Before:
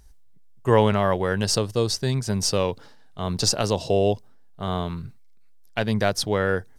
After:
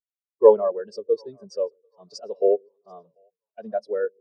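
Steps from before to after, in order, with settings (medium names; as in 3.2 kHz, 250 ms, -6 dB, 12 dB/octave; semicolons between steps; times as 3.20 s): high-pass 300 Hz 12 dB/octave; time stretch by phase-locked vocoder 0.62×; two-band feedback delay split 490 Hz, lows 132 ms, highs 740 ms, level -13 dB; spectral contrast expander 2.5:1; trim +7 dB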